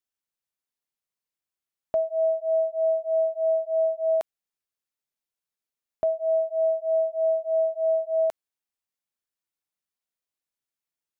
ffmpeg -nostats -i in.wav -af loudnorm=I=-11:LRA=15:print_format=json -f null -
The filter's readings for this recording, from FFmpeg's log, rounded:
"input_i" : "-25.1",
"input_tp" : "-18.0",
"input_lra" : "3.3",
"input_thresh" : "-35.6",